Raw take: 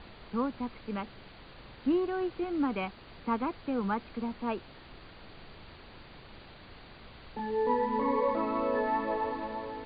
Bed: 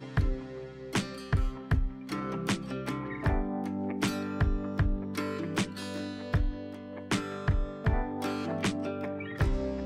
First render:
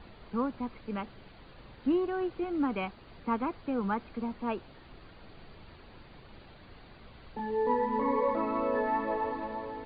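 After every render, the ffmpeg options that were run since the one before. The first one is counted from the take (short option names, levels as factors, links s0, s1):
-af "afftdn=nr=6:nf=-52"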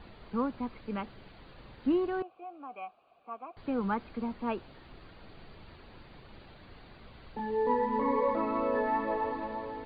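-filter_complex "[0:a]asettb=1/sr,asplit=3[s0][s1][s2];[s0]atrim=end=2.224[s3];[s1]atrim=start=2.22:end=3.57,asetpts=PTS-STARTPTS,afade=t=in:d=0.004:c=qsin,afade=t=out:st=1.346:d=0.004:c=qsin,asplit=3[s4][s5][s6];[s4]bandpass=f=730:t=q:w=8,volume=1[s7];[s5]bandpass=f=1090:t=q:w=8,volume=0.501[s8];[s6]bandpass=f=2440:t=q:w=8,volume=0.355[s9];[s7][s8][s9]amix=inputs=3:normalize=0[s10];[s2]atrim=start=3.566[s11];[s3][s10]acrossfade=d=0.004:c1=hsin:c2=qsin[s12];[s12][s11]acrossfade=d=0.004:c1=qsin:c2=hsin"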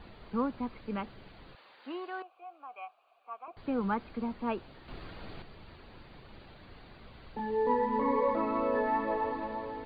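-filter_complex "[0:a]asettb=1/sr,asplit=3[s0][s1][s2];[s0]atrim=end=1.554[s3];[s1]atrim=start=1.55:end=3.48,asetpts=PTS-STARTPTS,afade=t=in:d=0.004:c=qsin,afade=t=out:st=1.926:d=0.004:c=qsin,highpass=710[s4];[s2]atrim=start=3.476[s5];[s3][s4]acrossfade=d=0.004:c1=hsin:c2=qsin[s6];[s6][s5]acrossfade=d=0.004:c1=qsin:c2=hsin,asplit=3[s7][s8][s9];[s7]atrim=end=4.882[s10];[s8]atrim=start=4.878:end=5.422,asetpts=PTS-STARTPTS,volume=2.11[s11];[s9]atrim=start=5.418[s12];[s10][s11]acrossfade=d=0.004:c1=hsin:c2=hsin[s13];[s13][s12]acrossfade=d=0.004:c1=hsin:c2=hsin"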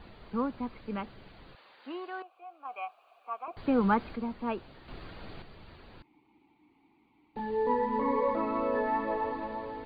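-filter_complex "[0:a]asettb=1/sr,asplit=3[s0][s1][s2];[s0]atrim=end=2.654[s3];[s1]atrim=start=2.65:end=4.16,asetpts=PTS-STARTPTS,afade=t=in:d=0.004:c=qsin,afade=t=out:st=1.506:d=0.004:c=qsin,acontrast=47[s4];[s2]atrim=start=4.156[s5];[s3][s4]acrossfade=d=0.004:c1=hsin:c2=qsin[s6];[s6][s5]acrossfade=d=0.004:c1=qsin:c2=hsin,asettb=1/sr,asplit=3[s7][s8][s9];[s7]atrim=end=6.024[s10];[s8]atrim=start=6.02:end=7.36,asetpts=PTS-STARTPTS,afade=t=in:d=0.004:c=qsin,afade=t=out:st=1.336:d=0.004:c=qsin,asplit=3[s11][s12][s13];[s11]bandpass=f=300:t=q:w=8,volume=1[s14];[s12]bandpass=f=870:t=q:w=8,volume=0.501[s15];[s13]bandpass=f=2240:t=q:w=8,volume=0.355[s16];[s14][s15][s16]amix=inputs=3:normalize=0[s17];[s9]atrim=start=7.356[s18];[s10][s17]acrossfade=d=0.004:c1=hsin:c2=qsin[s19];[s19][s18]acrossfade=d=0.004:c1=qsin:c2=hsin"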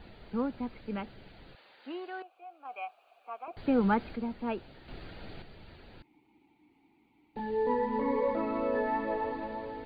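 -af "equalizer=f=1100:t=o:w=0.31:g=-9"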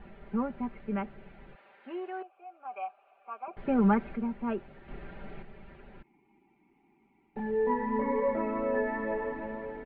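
-af "lowpass=f=2400:w=0.5412,lowpass=f=2400:w=1.3066,aecho=1:1:5.1:0.67"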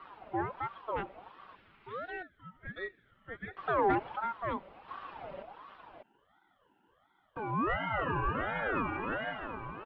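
-af "asoftclip=type=tanh:threshold=0.158,aeval=exprs='val(0)*sin(2*PI*860*n/s+860*0.35/1.4*sin(2*PI*1.4*n/s))':c=same"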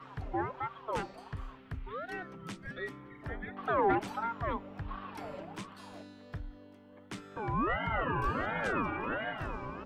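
-filter_complex "[1:a]volume=0.2[s0];[0:a][s0]amix=inputs=2:normalize=0"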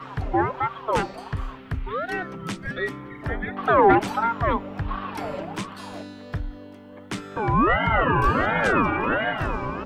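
-af "volume=3.98"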